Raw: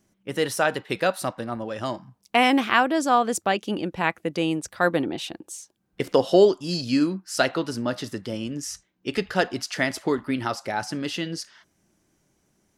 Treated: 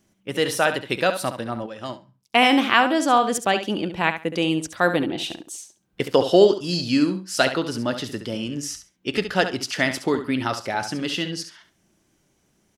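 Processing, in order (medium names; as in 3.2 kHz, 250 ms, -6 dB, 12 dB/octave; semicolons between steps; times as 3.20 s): peaking EQ 3.1 kHz +4 dB 0.8 oct; feedback delay 69 ms, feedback 18%, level -10 dB; 1.66–2.49 s: upward expansion 1.5:1, over -38 dBFS; trim +1.5 dB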